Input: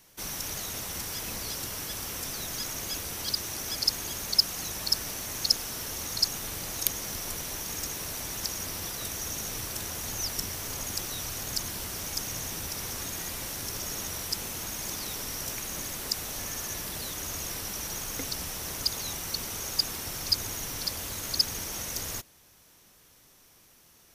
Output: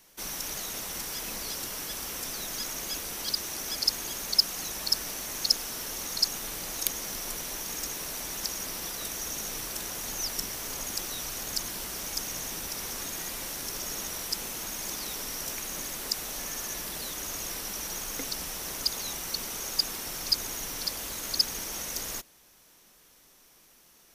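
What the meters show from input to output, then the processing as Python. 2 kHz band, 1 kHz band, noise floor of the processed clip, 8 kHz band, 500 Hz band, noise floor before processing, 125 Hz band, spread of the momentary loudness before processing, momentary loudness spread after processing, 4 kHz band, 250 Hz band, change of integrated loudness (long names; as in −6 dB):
0.0 dB, 0.0 dB, −59 dBFS, 0.0 dB, −0.5 dB, −59 dBFS, −7.0 dB, 6 LU, 6 LU, 0.0 dB, −1.5 dB, 0.0 dB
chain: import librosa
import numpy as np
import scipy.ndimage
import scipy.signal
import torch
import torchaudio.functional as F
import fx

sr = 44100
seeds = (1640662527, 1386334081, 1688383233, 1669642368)

y = fx.peak_eq(x, sr, hz=96.0, db=-13.0, octaves=0.88)
y = np.clip(10.0 ** (9.0 / 20.0) * y, -1.0, 1.0) / 10.0 ** (9.0 / 20.0)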